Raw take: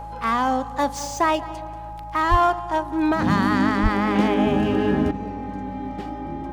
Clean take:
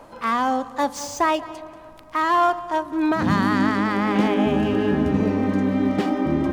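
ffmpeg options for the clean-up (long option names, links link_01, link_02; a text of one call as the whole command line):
ffmpeg -i in.wav -filter_complex "[0:a]bandreject=frequency=54.7:width_type=h:width=4,bandreject=frequency=109.4:width_type=h:width=4,bandreject=frequency=164.1:width_type=h:width=4,bandreject=frequency=830:width=30,asplit=3[link_01][link_02][link_03];[link_01]afade=type=out:start_time=2.3:duration=0.02[link_04];[link_02]highpass=frequency=140:width=0.5412,highpass=frequency=140:width=1.3066,afade=type=in:start_time=2.3:duration=0.02,afade=type=out:start_time=2.42:duration=0.02[link_05];[link_03]afade=type=in:start_time=2.42:duration=0.02[link_06];[link_04][link_05][link_06]amix=inputs=3:normalize=0,asplit=3[link_07][link_08][link_09];[link_07]afade=type=out:start_time=3.82:duration=0.02[link_10];[link_08]highpass=frequency=140:width=0.5412,highpass=frequency=140:width=1.3066,afade=type=in:start_time=3.82:duration=0.02,afade=type=out:start_time=3.94:duration=0.02[link_11];[link_09]afade=type=in:start_time=3.94:duration=0.02[link_12];[link_10][link_11][link_12]amix=inputs=3:normalize=0,asetnsamples=nb_out_samples=441:pad=0,asendcmd='5.11 volume volume 11.5dB',volume=0dB" out.wav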